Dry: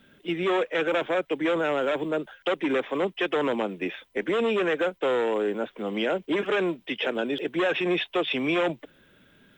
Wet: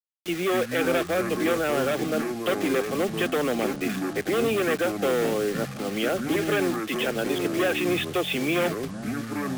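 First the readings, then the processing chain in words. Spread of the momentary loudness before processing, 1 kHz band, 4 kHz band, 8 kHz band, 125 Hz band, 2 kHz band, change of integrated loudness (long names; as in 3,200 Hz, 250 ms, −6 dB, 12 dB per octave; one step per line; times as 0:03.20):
5 LU, +0.5 dB, +1.0 dB, can't be measured, +7.0 dB, +1.0 dB, +1.0 dB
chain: bit-depth reduction 6 bits, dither none
delay with pitch and tempo change per echo 139 ms, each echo −6 semitones, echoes 3, each echo −6 dB
Butterworth band-reject 960 Hz, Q 6.5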